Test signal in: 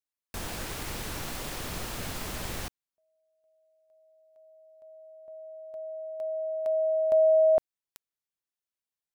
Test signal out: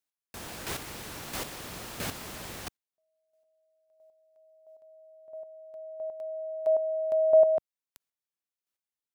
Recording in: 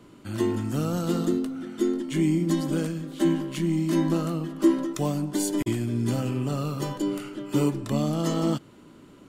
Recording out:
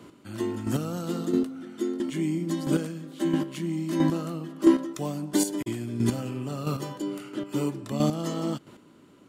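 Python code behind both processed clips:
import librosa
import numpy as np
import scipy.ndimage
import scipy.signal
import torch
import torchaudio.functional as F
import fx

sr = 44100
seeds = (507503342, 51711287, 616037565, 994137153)

y = fx.highpass(x, sr, hz=110.0, slope=6)
y = fx.chopper(y, sr, hz=1.5, depth_pct=60, duty_pct=15)
y = y * librosa.db_to_amplitude(4.0)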